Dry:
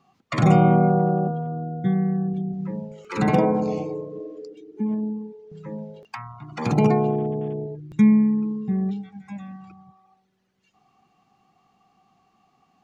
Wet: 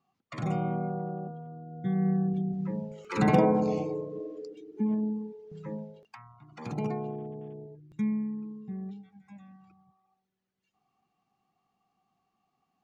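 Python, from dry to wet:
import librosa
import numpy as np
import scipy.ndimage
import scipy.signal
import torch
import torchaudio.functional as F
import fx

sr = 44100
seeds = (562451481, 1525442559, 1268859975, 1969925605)

y = fx.gain(x, sr, db=fx.line((1.65, -14.5), (2.08, -3.0), (5.72, -3.0), (6.16, -14.0)))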